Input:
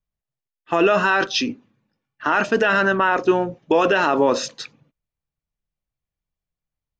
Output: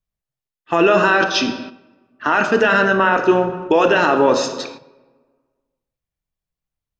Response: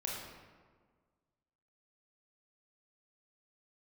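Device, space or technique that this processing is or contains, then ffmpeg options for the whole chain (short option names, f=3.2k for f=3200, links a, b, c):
keyed gated reverb: -filter_complex "[0:a]asplit=3[a][b][c];[1:a]atrim=start_sample=2205[d];[b][d]afir=irnorm=-1:irlink=0[e];[c]apad=whole_len=308384[f];[e][f]sidechaingate=range=-10dB:threshold=-47dB:ratio=16:detection=peak,volume=-3.5dB[g];[a][g]amix=inputs=2:normalize=0,volume=-1dB"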